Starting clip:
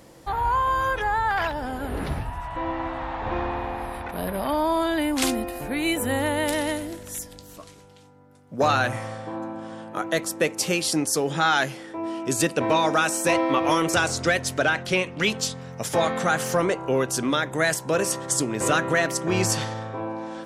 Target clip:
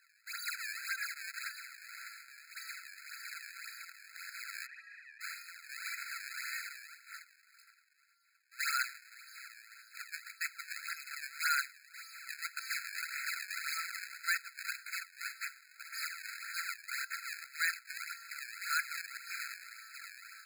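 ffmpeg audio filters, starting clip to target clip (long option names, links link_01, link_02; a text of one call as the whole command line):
ffmpeg -i in.wav -filter_complex "[0:a]acrusher=samples=37:mix=1:aa=0.000001:lfo=1:lforange=59.2:lforate=1.8,asplit=3[link_01][link_02][link_03];[link_01]afade=type=out:start_time=4.65:duration=0.02[link_04];[link_02]asplit=3[link_05][link_06][link_07];[link_05]bandpass=frequency=530:width_type=q:width=8,volume=0dB[link_08];[link_06]bandpass=frequency=1840:width_type=q:width=8,volume=-6dB[link_09];[link_07]bandpass=frequency=2480:width_type=q:width=8,volume=-9dB[link_10];[link_08][link_09][link_10]amix=inputs=3:normalize=0,afade=type=in:start_time=4.65:duration=0.02,afade=type=out:start_time=5.2:duration=0.02[link_11];[link_03]afade=type=in:start_time=5.2:duration=0.02[link_12];[link_04][link_11][link_12]amix=inputs=3:normalize=0,afftfilt=real='re*eq(mod(floor(b*sr/1024/1300),2),1)':imag='im*eq(mod(floor(b*sr/1024/1300),2),1)':win_size=1024:overlap=0.75,volume=-7dB" out.wav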